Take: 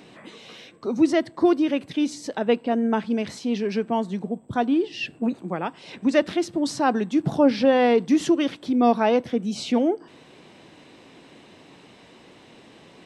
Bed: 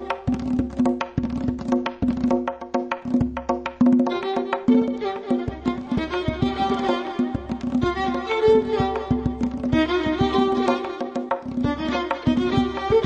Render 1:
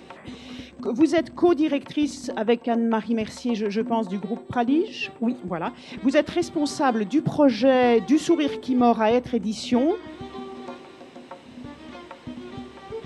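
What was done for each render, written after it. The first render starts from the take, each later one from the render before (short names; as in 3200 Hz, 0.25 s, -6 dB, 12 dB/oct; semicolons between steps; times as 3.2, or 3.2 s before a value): add bed -17 dB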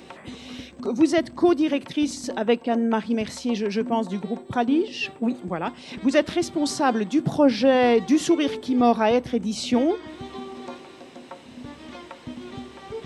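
high shelf 4500 Hz +5.5 dB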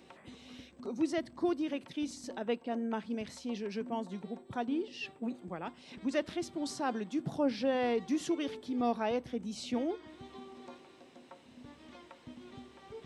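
gain -13 dB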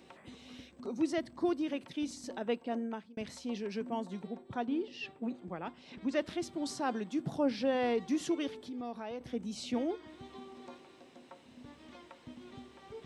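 2.77–3.17 fade out; 4.27–6.19 air absorption 66 m; 8.47–9.21 compressor 2:1, threshold -44 dBFS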